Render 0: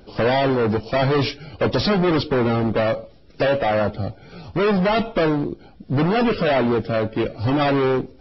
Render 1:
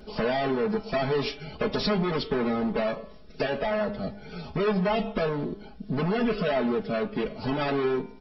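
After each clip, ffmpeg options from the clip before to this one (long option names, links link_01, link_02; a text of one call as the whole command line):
ffmpeg -i in.wav -af "aecho=1:1:4.7:0.93,bandreject=frequency=101.7:width_type=h:width=4,bandreject=frequency=203.4:width_type=h:width=4,bandreject=frequency=305.1:width_type=h:width=4,bandreject=frequency=406.8:width_type=h:width=4,bandreject=frequency=508.5:width_type=h:width=4,bandreject=frequency=610.2:width_type=h:width=4,bandreject=frequency=711.9:width_type=h:width=4,bandreject=frequency=813.6:width_type=h:width=4,bandreject=frequency=915.3:width_type=h:width=4,bandreject=frequency=1017:width_type=h:width=4,bandreject=frequency=1118.7:width_type=h:width=4,bandreject=frequency=1220.4:width_type=h:width=4,bandreject=frequency=1322.1:width_type=h:width=4,bandreject=frequency=1423.8:width_type=h:width=4,bandreject=frequency=1525.5:width_type=h:width=4,bandreject=frequency=1627.2:width_type=h:width=4,bandreject=frequency=1728.9:width_type=h:width=4,bandreject=frequency=1830.6:width_type=h:width=4,bandreject=frequency=1932.3:width_type=h:width=4,bandreject=frequency=2034:width_type=h:width=4,bandreject=frequency=2135.7:width_type=h:width=4,bandreject=frequency=2237.4:width_type=h:width=4,bandreject=frequency=2339.1:width_type=h:width=4,bandreject=frequency=2440.8:width_type=h:width=4,bandreject=frequency=2542.5:width_type=h:width=4,bandreject=frequency=2644.2:width_type=h:width=4,bandreject=frequency=2745.9:width_type=h:width=4,bandreject=frequency=2847.6:width_type=h:width=4,bandreject=frequency=2949.3:width_type=h:width=4,bandreject=frequency=3051:width_type=h:width=4,bandreject=frequency=3152.7:width_type=h:width=4,bandreject=frequency=3254.4:width_type=h:width=4,bandreject=frequency=3356.1:width_type=h:width=4,bandreject=frequency=3457.8:width_type=h:width=4,bandreject=frequency=3559.5:width_type=h:width=4,bandreject=frequency=3661.2:width_type=h:width=4,acompressor=threshold=-27dB:ratio=2,volume=-2.5dB" out.wav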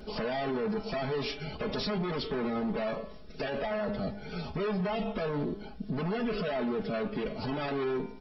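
ffmpeg -i in.wav -af "alimiter=level_in=2.5dB:limit=-24dB:level=0:latency=1:release=16,volume=-2.5dB,volume=1dB" out.wav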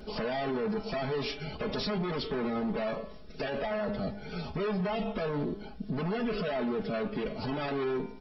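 ffmpeg -i in.wav -af anull out.wav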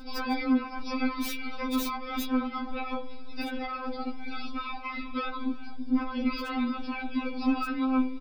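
ffmpeg -i in.wav -filter_complex "[0:a]aecho=1:1:345:0.0841,acrossover=split=370|2200[link_01][link_02][link_03];[link_03]aeval=exprs='(mod(56.2*val(0)+1,2)-1)/56.2':channel_layout=same[link_04];[link_01][link_02][link_04]amix=inputs=3:normalize=0,afftfilt=real='re*3.46*eq(mod(b,12),0)':imag='im*3.46*eq(mod(b,12),0)':win_size=2048:overlap=0.75,volume=6.5dB" out.wav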